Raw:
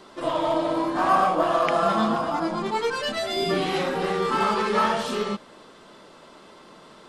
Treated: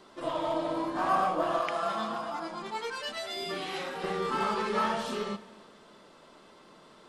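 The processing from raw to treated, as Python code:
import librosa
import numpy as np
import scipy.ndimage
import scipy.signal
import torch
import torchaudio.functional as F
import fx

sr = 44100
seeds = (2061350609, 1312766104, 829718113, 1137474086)

y = fx.low_shelf(x, sr, hz=490.0, db=-10.5, at=(1.61, 4.04))
y = fx.rev_schroeder(y, sr, rt60_s=1.9, comb_ms=25, drr_db=16.0)
y = y * librosa.db_to_amplitude(-7.0)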